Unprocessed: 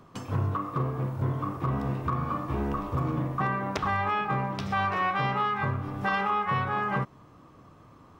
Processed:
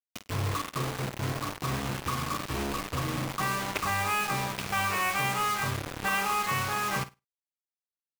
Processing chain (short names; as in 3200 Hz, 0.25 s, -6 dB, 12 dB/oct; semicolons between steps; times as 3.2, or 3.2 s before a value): fifteen-band EQ 160 Hz -3 dB, 2500 Hz +11 dB, 6300 Hz -3 dB; bit-crush 5-bit; flutter echo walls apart 8.9 m, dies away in 0.21 s; gain -3.5 dB